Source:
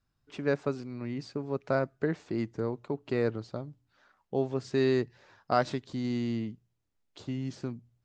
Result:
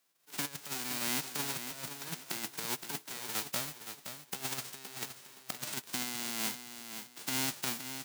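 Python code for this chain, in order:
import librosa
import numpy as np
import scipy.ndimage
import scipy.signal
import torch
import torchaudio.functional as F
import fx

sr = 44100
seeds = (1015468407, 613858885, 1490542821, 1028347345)

p1 = fx.envelope_flatten(x, sr, power=0.1)
p2 = scipy.signal.sosfilt(scipy.signal.butter(4, 150.0, 'highpass', fs=sr, output='sos'), p1)
p3 = fx.over_compress(p2, sr, threshold_db=-34.0, ratio=-0.5)
p4 = p3 + fx.echo_feedback(p3, sr, ms=519, feedback_pct=27, wet_db=-9.0, dry=0)
y = p4 * librosa.db_to_amplitude(-2.5)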